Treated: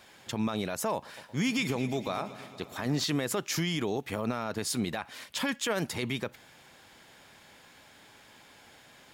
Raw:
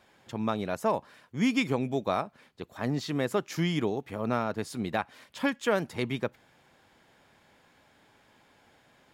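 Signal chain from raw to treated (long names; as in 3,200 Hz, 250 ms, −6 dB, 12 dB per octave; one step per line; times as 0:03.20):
high-shelf EQ 2,200 Hz +9 dB
brickwall limiter −24 dBFS, peak gain reduction 12.5 dB
0:00.94–0:03.04: echo machine with several playback heads 116 ms, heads first and second, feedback 66%, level −19 dB
level +3.5 dB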